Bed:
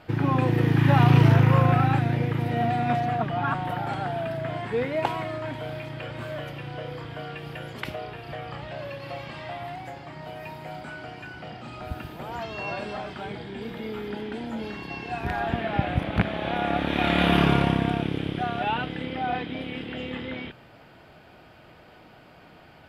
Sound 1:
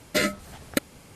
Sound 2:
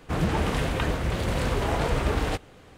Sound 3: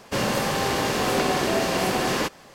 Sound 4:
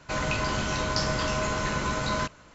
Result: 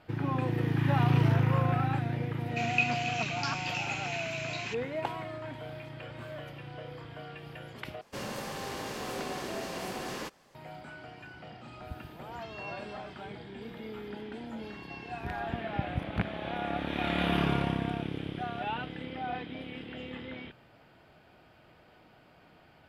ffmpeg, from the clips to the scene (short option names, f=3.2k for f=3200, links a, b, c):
-filter_complex "[0:a]volume=-8dB[a];[4:a]highpass=f=2.5k:t=q:w=8.4[b];[a]asplit=2[c][d];[c]atrim=end=8.014[e];[3:a]atrim=end=2.54,asetpts=PTS-STARTPTS,volume=-14dB[f];[d]atrim=start=10.546[g];[b]atrim=end=2.54,asetpts=PTS-STARTPTS,volume=-11dB,afade=t=in:d=0.004:c=hsin,afade=t=out:st=2.536:d=0.004:c=hsin,adelay=2470[h];[e][f]acrossfade=d=0.004:c1=hsin:c2=hsin[i];[i][g]acrossfade=d=0.004:c1=hsin:c2=hsin[j];[j][h]amix=inputs=2:normalize=0"